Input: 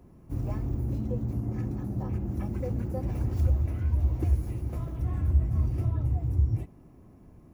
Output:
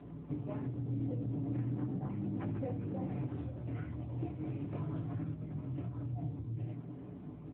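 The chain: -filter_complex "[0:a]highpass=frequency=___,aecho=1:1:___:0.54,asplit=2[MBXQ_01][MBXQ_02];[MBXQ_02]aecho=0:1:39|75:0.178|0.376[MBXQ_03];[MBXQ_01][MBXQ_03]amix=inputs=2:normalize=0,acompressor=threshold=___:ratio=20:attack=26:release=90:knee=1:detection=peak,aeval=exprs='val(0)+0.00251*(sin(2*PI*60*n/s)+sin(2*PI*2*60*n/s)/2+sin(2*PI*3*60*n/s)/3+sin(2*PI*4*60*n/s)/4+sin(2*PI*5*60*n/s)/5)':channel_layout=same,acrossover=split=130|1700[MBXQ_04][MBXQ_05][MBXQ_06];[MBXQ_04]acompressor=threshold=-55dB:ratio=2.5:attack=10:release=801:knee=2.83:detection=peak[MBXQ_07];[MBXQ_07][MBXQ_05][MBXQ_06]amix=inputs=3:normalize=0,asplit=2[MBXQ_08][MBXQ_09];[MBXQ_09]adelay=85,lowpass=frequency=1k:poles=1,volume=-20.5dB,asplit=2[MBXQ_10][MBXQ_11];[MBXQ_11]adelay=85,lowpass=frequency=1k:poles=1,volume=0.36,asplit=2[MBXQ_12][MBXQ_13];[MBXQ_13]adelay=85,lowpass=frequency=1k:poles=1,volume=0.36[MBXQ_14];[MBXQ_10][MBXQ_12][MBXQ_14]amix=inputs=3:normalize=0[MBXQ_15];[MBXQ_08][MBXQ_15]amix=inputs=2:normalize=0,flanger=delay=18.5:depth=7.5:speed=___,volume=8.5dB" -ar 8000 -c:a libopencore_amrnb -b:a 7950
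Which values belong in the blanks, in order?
51, 6.9, -39dB, 0.39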